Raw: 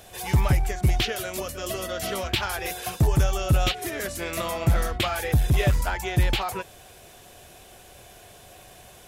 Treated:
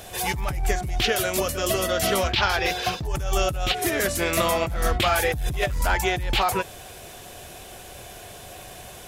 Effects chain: 2.32–3.05 s: resonant high shelf 6.8 kHz -12 dB, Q 1.5; compressor with a negative ratio -26 dBFS, ratio -1; trim +3.5 dB

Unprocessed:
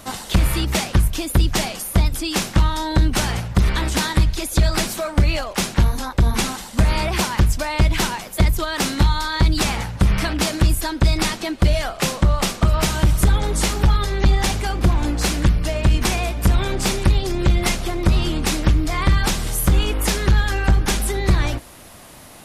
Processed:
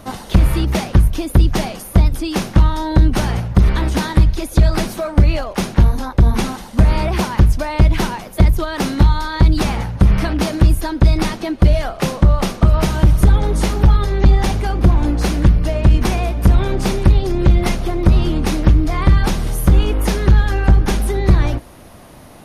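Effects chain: tilt shelf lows +5 dB, about 1.3 kHz; band-stop 7.6 kHz, Q 6.7

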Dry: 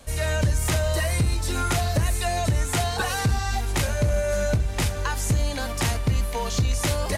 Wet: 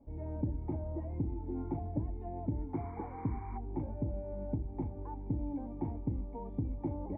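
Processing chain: painted sound noise, 2.73–3.58 s, 930–2400 Hz -24 dBFS; cascade formant filter u

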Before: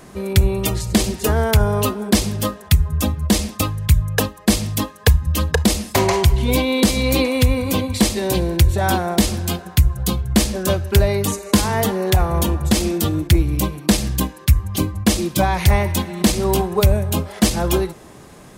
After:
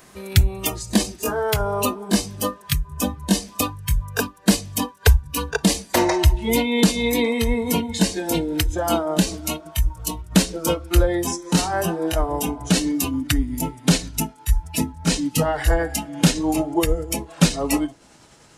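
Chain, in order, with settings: pitch bend over the whole clip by -4 st starting unshifted; spectral noise reduction 11 dB; tape noise reduction on one side only encoder only

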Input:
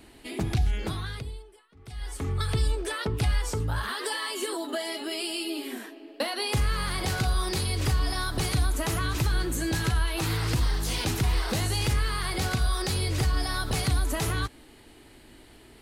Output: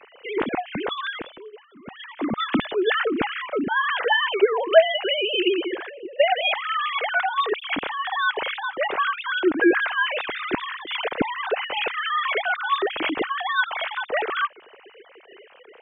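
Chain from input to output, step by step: formants replaced by sine waves; trim +3 dB

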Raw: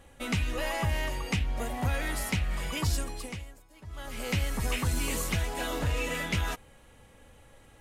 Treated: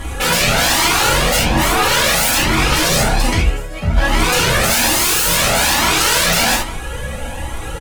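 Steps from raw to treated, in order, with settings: 2.55–4.64 s: treble shelf 6.1 kHz -10.5 dB; sine folder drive 19 dB, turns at -18 dBFS; speakerphone echo 140 ms, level -11 dB; gated-style reverb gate 100 ms flat, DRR -2 dB; Shepard-style flanger rising 1.2 Hz; trim +7 dB

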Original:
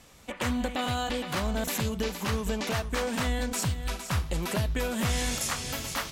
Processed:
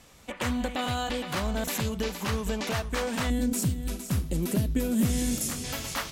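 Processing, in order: 3.30–5.64 s: FFT filter 100 Hz 0 dB, 260 Hz +9 dB, 920 Hz -11 dB, 4.5 kHz -5 dB, 11 kHz +4 dB

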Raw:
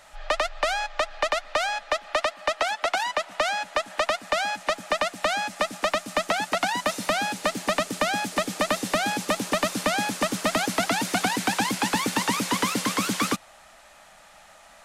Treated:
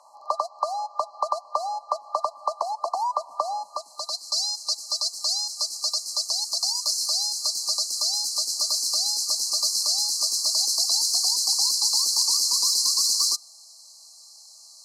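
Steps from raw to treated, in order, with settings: rattle on loud lows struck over -42 dBFS, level -25 dBFS; FFT band-reject 1.2–4 kHz; band-pass sweep 1.1 kHz -> 4.7 kHz, 3.56–4.27 s; RIAA curve recording; trim +7 dB

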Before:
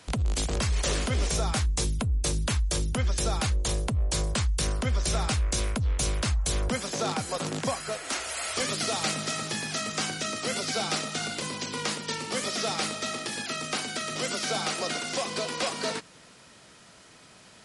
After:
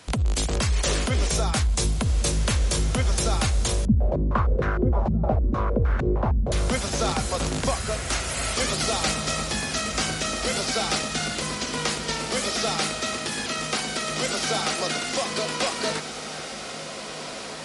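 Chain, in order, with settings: echo that smears into a reverb 1730 ms, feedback 53%, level -9 dB; 3.85–6.52 s: step-sequenced low-pass 6.5 Hz 210–1500 Hz; trim +3.5 dB

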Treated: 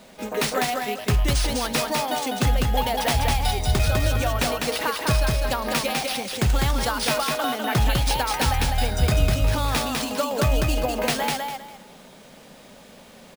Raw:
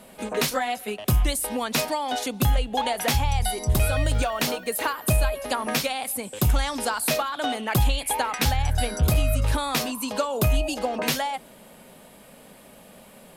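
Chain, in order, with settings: sample-and-hold 3×; feedback delay 201 ms, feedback 24%, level -3 dB

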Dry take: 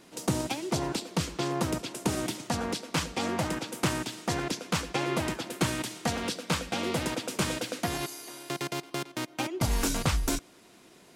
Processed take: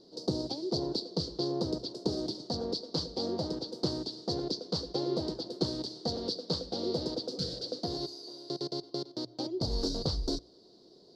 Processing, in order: hum notches 60/120 Hz; spectral replace 7.35–7.64 s, 210–1300 Hz; FFT filter 250 Hz 0 dB, 430 Hz +8 dB, 2.5 kHz -27 dB, 4.5 kHz +13 dB, 6.8 kHz -13 dB, 10 kHz -23 dB, 14 kHz -26 dB; trim -5 dB

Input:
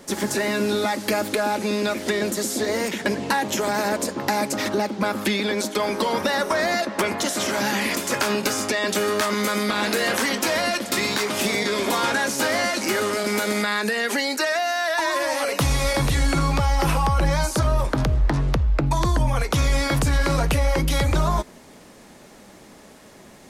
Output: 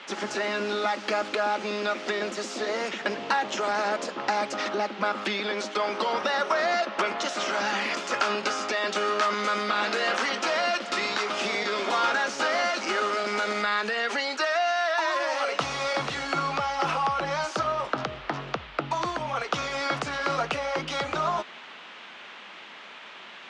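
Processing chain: cabinet simulation 260–6100 Hz, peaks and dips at 280 Hz -4 dB, 730 Hz +5 dB, 1.3 kHz +9 dB, 2.8 kHz +4 dB; band noise 810–3400 Hz -40 dBFS; trim -5.5 dB

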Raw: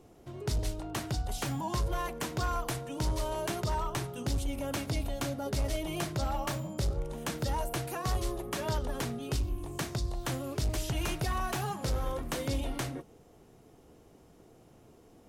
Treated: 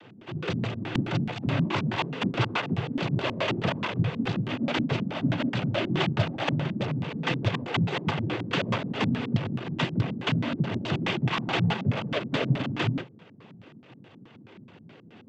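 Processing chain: square wave that keeps the level; noise-vocoded speech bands 16; LFO low-pass square 4.7 Hz 220–3000 Hz; trim +3.5 dB

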